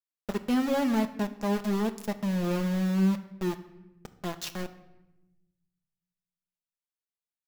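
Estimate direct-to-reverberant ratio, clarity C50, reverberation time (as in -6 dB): 6.5 dB, 13.5 dB, 1.0 s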